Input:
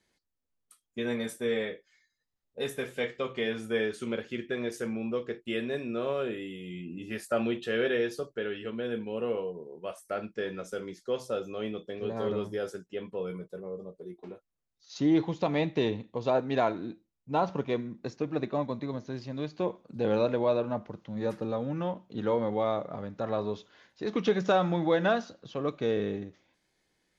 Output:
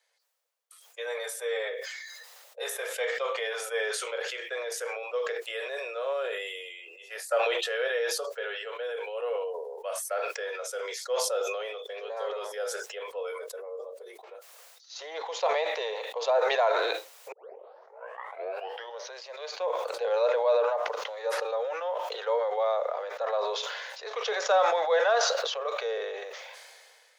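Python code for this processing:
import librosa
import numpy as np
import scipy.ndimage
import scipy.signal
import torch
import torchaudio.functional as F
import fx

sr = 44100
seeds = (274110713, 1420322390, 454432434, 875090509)

y = fx.edit(x, sr, fx.tape_start(start_s=17.32, length_s=1.81), tone=tone)
y = scipy.signal.sosfilt(scipy.signal.butter(12, 470.0, 'highpass', fs=sr, output='sos'), y)
y = fx.dynamic_eq(y, sr, hz=2700.0, q=1.8, threshold_db=-49.0, ratio=4.0, max_db=-4)
y = fx.sustainer(y, sr, db_per_s=27.0)
y = y * 10.0 ** (2.0 / 20.0)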